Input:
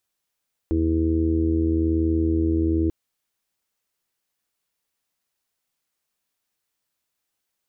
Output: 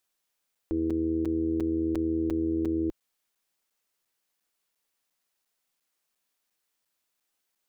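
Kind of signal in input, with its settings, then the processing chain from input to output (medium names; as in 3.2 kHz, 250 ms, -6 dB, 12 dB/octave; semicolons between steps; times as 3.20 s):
steady additive tone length 2.19 s, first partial 81.1 Hz, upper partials -17.5/-10/2/-9/-15.5 dB, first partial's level -22.5 dB
peaking EQ 81 Hz -9 dB 1.8 oct; peak limiter -20.5 dBFS; crackling interface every 0.35 s, samples 256, zero, from 0.55 s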